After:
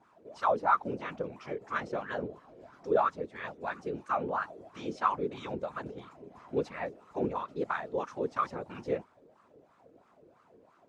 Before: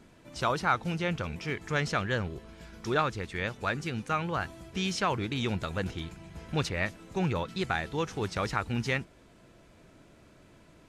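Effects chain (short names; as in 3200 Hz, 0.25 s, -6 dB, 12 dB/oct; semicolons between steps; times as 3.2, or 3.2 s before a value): tone controls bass +9 dB, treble +11 dB; whisperiser; wah 3 Hz 430–1200 Hz, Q 5.5; gain +7.5 dB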